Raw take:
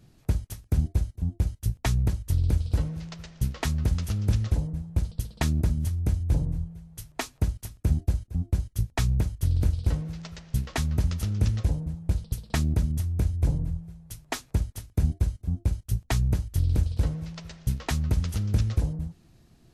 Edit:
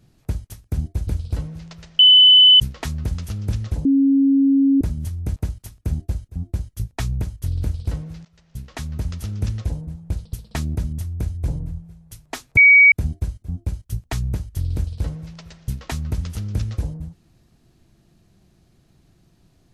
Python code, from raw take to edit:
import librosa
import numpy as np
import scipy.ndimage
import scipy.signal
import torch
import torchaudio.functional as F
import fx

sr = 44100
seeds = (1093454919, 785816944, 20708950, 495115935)

y = fx.edit(x, sr, fx.cut(start_s=1.07, length_s=1.41),
    fx.insert_tone(at_s=3.4, length_s=0.61, hz=3010.0, db=-6.5),
    fx.bleep(start_s=4.65, length_s=0.96, hz=274.0, db=-12.0),
    fx.cut(start_s=6.16, length_s=1.19),
    fx.fade_in_from(start_s=10.24, length_s=1.21, curve='qsin', floor_db=-23.5),
    fx.bleep(start_s=14.56, length_s=0.35, hz=2260.0, db=-6.5), tone=tone)